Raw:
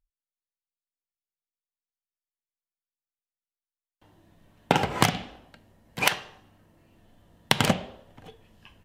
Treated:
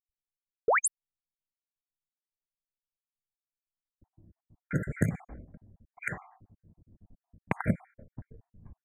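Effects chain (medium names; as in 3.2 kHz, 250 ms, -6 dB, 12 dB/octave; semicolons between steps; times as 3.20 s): random holes in the spectrogram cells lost 52%; gate -53 dBFS, range -6 dB; painted sound rise, 0.68–0.88 s, 380–12000 Hz -13 dBFS; tone controls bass +12 dB, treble -3 dB; compression 2:1, threshold -31 dBFS, peak gain reduction 11.5 dB; brick-wall FIR band-stop 2.4–6.4 kHz; level-controlled noise filter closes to 380 Hz, open at -27 dBFS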